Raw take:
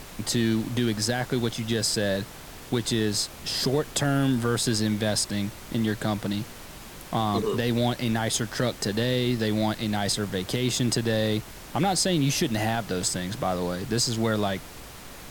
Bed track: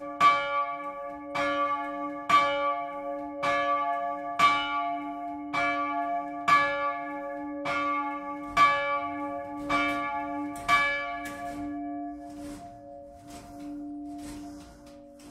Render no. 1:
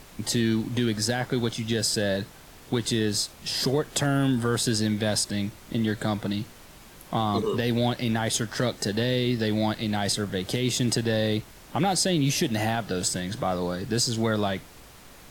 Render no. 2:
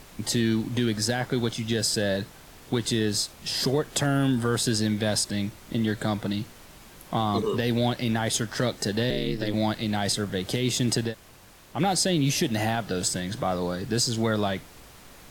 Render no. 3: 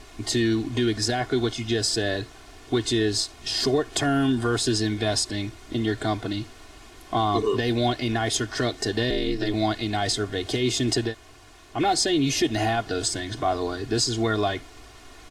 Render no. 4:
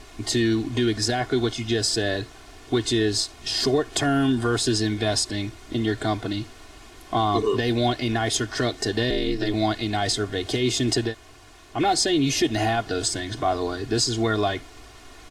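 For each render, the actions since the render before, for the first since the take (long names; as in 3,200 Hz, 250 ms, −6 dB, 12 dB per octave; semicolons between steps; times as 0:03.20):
noise reduction from a noise print 6 dB
0:09.10–0:09.54: ring modulation 99 Hz; 0:11.10–0:11.76: fill with room tone, crossfade 0.10 s
low-pass filter 7,800 Hz 12 dB per octave; comb filter 2.8 ms, depth 85%
level +1 dB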